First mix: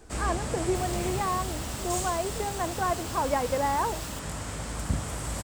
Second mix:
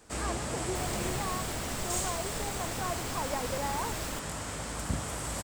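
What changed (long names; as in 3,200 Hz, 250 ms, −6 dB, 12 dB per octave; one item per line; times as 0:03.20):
speech −8.0 dB
second sound: remove linear-phase brick-wall high-pass 2,500 Hz
master: add low-shelf EQ 170 Hz −6.5 dB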